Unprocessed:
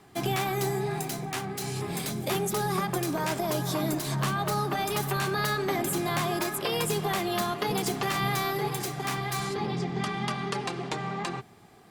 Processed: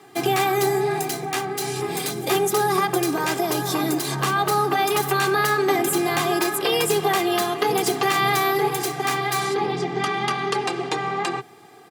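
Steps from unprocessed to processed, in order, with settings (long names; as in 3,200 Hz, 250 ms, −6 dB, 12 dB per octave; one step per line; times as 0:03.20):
high-pass filter 140 Hz 24 dB per octave
comb filter 2.5 ms, depth 62%
level +5.5 dB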